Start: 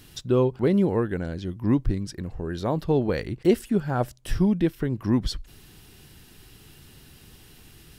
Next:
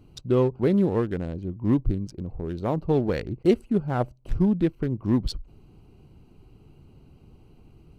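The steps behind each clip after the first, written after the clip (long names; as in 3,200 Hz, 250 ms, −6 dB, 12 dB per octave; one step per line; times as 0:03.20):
adaptive Wiener filter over 25 samples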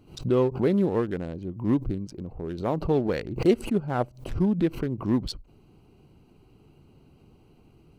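low-shelf EQ 110 Hz −9.5 dB
background raised ahead of every attack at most 140 dB per second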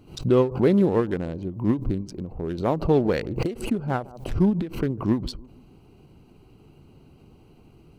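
bucket-brigade delay 146 ms, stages 1,024, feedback 46%, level −22 dB
every ending faded ahead of time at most 170 dB per second
level +4 dB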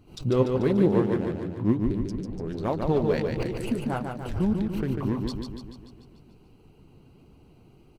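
flanger 1.5 Hz, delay 0.5 ms, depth 9.4 ms, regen +49%
repeating echo 146 ms, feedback 58%, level −5 dB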